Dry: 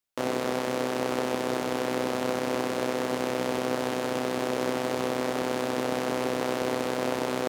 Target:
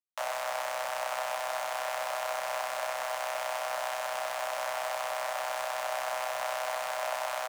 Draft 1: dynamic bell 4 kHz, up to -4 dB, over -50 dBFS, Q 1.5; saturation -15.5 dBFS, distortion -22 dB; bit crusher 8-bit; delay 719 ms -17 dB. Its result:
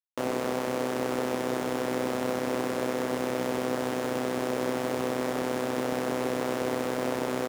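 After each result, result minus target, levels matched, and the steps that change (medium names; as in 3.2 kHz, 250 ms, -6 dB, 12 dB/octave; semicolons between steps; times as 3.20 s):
echo 265 ms early; 500 Hz band +2.5 dB
change: delay 984 ms -17 dB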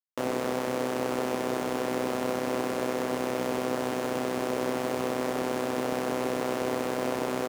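500 Hz band +2.5 dB
add after dynamic bell: steep high-pass 580 Hz 96 dB/octave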